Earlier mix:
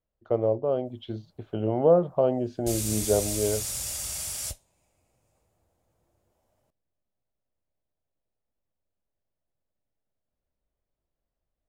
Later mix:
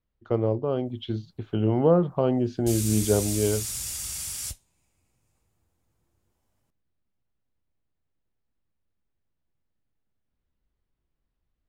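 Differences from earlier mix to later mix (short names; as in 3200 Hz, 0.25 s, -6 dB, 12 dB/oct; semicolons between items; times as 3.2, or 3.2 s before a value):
speech +6.5 dB; master: add bell 610 Hz -12 dB 0.86 oct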